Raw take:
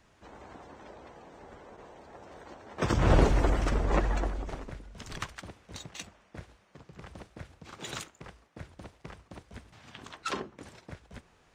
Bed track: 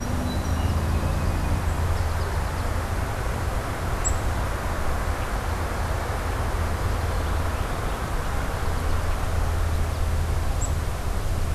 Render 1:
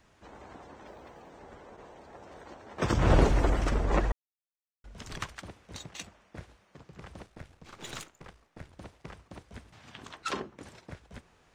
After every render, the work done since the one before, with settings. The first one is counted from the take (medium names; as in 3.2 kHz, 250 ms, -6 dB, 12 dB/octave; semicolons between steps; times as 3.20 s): 0.86–1.33 s: block-companded coder 7-bit; 4.12–4.84 s: mute; 7.26–8.73 s: partial rectifier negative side -7 dB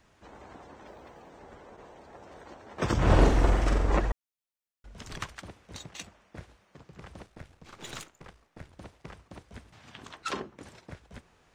3.03–3.97 s: flutter echo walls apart 7.6 m, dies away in 0.51 s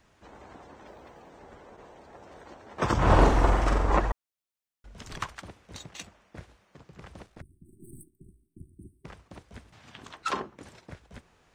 7.41–9.05 s: spectral selection erased 390–8000 Hz; dynamic bell 1 kHz, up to +7 dB, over -47 dBFS, Q 1.2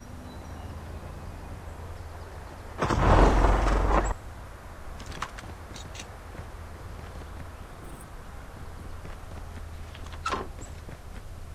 add bed track -16.5 dB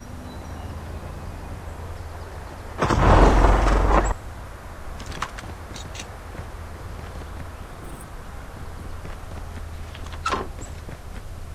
trim +5.5 dB; peak limiter -2 dBFS, peak gain reduction 3 dB